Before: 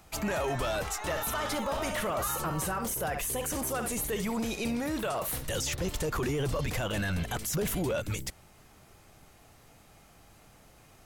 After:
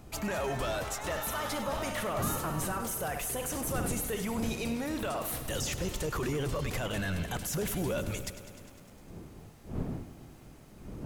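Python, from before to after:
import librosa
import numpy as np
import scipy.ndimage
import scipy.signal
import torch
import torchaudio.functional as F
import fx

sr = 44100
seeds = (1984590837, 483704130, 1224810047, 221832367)

y = fx.dmg_wind(x, sr, seeds[0], corner_hz=240.0, level_db=-41.0)
y = fx.echo_crushed(y, sr, ms=101, feedback_pct=80, bits=9, wet_db=-13.5)
y = F.gain(torch.from_numpy(y), -2.5).numpy()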